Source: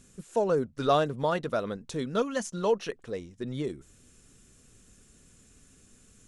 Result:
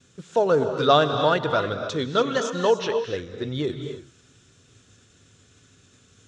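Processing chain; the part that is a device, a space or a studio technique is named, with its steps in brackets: expander -54 dBFS; car door speaker (cabinet simulation 100–6700 Hz, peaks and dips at 100 Hz +9 dB, 210 Hz -8 dB, 1.4 kHz +4 dB, 3.5 kHz +7 dB); 1.54–3.03 s: low-pass 8.9 kHz 24 dB/octave; gated-style reverb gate 320 ms rising, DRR 6.5 dB; trim +6 dB

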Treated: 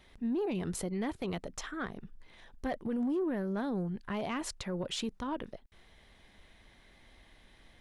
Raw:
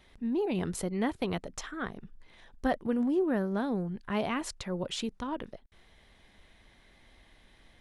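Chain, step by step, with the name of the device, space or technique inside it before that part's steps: soft clipper into limiter (saturation -22.5 dBFS, distortion -19 dB; peak limiter -27.5 dBFS, peak gain reduction 4.5 dB)

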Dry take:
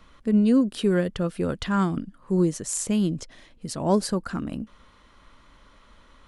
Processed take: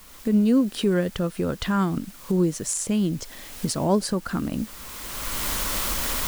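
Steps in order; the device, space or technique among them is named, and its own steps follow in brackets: cheap recorder with automatic gain (white noise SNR 25 dB; recorder AGC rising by 20 dB/s)

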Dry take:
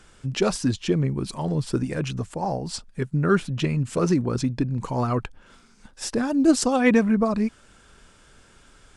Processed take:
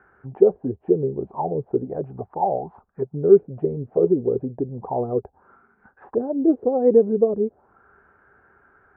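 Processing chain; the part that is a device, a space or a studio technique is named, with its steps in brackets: envelope filter bass rig (touch-sensitive low-pass 470–1600 Hz down, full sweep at -20 dBFS; cabinet simulation 70–2000 Hz, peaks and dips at 75 Hz +4 dB, 400 Hz +10 dB, 770 Hz +10 dB); trim -8 dB

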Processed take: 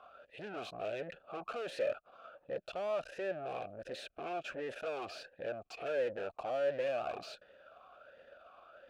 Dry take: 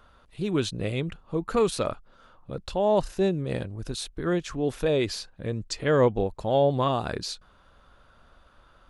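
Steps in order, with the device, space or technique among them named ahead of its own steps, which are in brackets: talk box (valve stage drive 41 dB, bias 0.7; talking filter a-e 1.4 Hz); trim +16 dB

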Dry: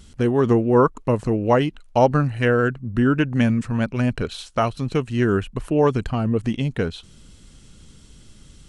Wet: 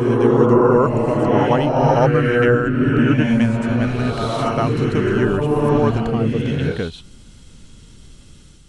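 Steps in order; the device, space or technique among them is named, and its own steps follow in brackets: reverse reverb (reverse; reverberation RT60 2.1 s, pre-delay 80 ms, DRR -3 dB; reverse); trim -1 dB

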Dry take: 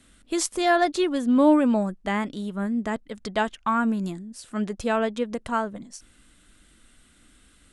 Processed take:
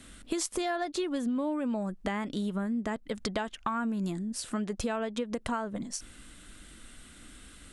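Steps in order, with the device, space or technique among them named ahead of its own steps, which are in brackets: serial compression, peaks first (compression, threshold -30 dBFS, peak gain reduction 16 dB; compression 2:1, threshold -38 dBFS, peak gain reduction 6 dB); trim +6 dB

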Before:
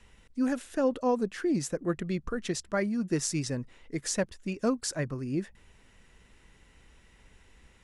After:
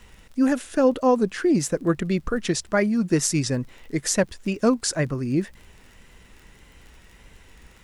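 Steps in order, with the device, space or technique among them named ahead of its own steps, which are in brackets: vinyl LP (wow and flutter; crackle 30 per s -46 dBFS; pink noise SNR 41 dB); trim +8 dB

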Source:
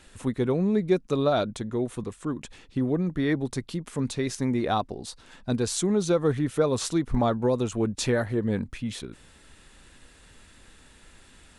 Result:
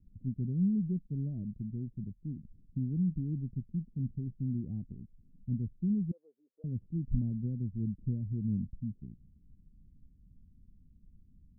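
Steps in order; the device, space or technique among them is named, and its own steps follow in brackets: 6.11–6.64 s: steep high-pass 500 Hz 36 dB/octave; the neighbour's flat through the wall (low-pass 200 Hz 24 dB/octave; peaking EQ 190 Hz +3 dB 0.66 oct); trim -3 dB

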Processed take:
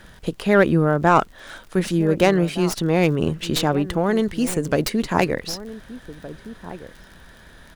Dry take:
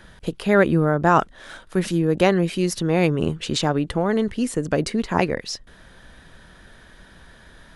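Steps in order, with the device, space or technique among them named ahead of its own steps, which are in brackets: 4.04–5.34 s: treble shelf 5.8 kHz +7.5 dB; echo from a far wall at 260 m, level -15 dB; record under a worn stylus (tracing distortion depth 0.074 ms; crackle 39 per s -35 dBFS; pink noise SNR 40 dB); trim +1 dB

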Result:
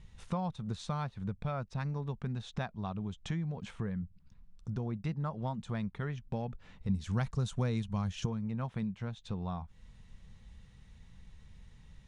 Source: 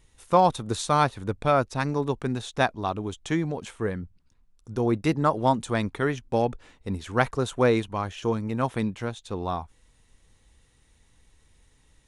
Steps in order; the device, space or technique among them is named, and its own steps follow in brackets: jukebox (low-pass 5 kHz 12 dB/octave; resonant low shelf 240 Hz +6.5 dB, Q 3; compression 4:1, threshold -36 dBFS, peak gain reduction 19.5 dB); 6.89–8.26 s: tone controls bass +6 dB, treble +14 dB

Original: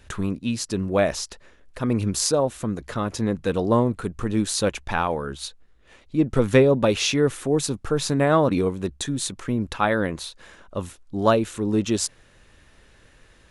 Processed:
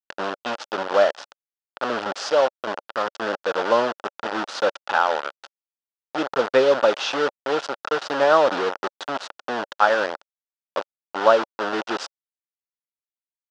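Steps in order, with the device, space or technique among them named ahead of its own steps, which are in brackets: hand-held game console (bit crusher 4-bit; cabinet simulation 470–4700 Hz, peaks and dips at 570 Hz +6 dB, 850 Hz +5 dB, 1.4 kHz +8 dB, 2.2 kHz -8 dB, 4.1 kHz -4 dB)

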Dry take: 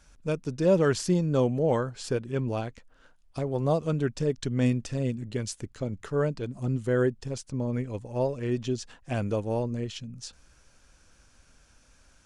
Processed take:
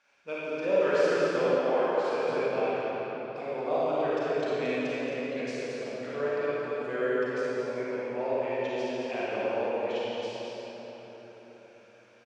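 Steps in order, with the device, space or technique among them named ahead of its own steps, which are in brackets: station announcement (band-pass 500–3600 Hz; peaking EQ 2.4 kHz +7 dB 0.46 oct; loudspeakers at several distances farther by 19 m -11 dB, 77 m -6 dB; reverberation RT60 4.5 s, pre-delay 31 ms, DRR -8.5 dB); 1.58–2.28 s: tone controls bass -8 dB, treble -2 dB; trim -6.5 dB

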